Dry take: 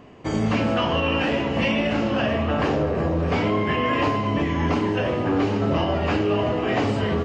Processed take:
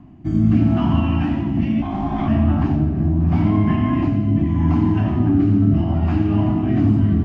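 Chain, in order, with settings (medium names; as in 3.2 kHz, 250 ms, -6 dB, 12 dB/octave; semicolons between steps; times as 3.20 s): bass shelf 280 Hz +6.5 dB; two-band feedback delay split 320 Hz, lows 229 ms, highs 88 ms, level -8.5 dB; rotary cabinet horn 0.75 Hz; 1.82–2.28 s: ring modulator 490 Hz; Chebyshev band-stop 320–730 Hz, order 2; tilt shelf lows +8 dB; trim -2.5 dB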